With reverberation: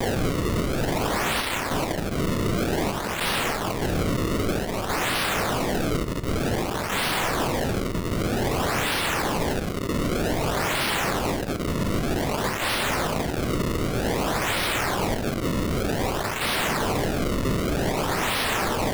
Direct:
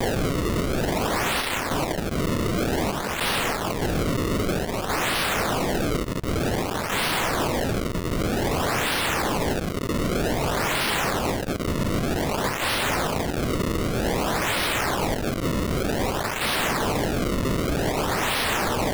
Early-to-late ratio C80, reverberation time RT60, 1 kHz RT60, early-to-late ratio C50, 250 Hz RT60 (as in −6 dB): 19.0 dB, 0.45 s, 0.40 s, 14.0 dB, 0.60 s